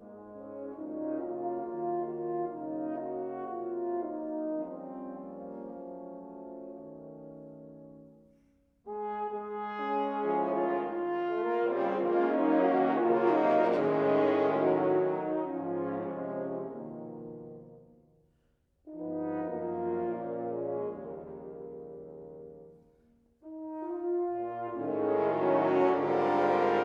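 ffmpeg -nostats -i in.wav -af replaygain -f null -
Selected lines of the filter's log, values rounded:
track_gain = +11.0 dB
track_peak = 0.134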